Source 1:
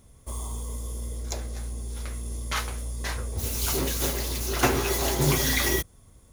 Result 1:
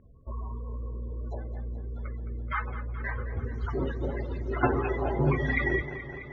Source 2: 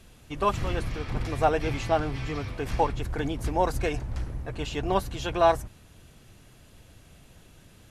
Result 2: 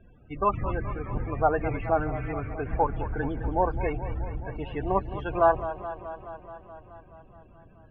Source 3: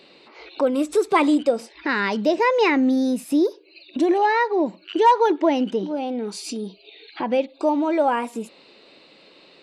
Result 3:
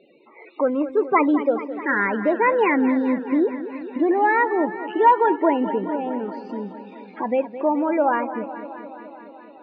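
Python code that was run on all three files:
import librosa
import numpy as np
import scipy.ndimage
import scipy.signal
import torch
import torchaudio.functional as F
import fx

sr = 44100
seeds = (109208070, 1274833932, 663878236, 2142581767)

y = fx.spec_topn(x, sr, count=32)
y = fx.ladder_lowpass(y, sr, hz=2300.0, resonance_pct=35)
y = fx.echo_warbled(y, sr, ms=213, feedback_pct=73, rate_hz=2.8, cents=70, wet_db=-13.0)
y = F.gain(torch.from_numpy(y), 6.5).numpy()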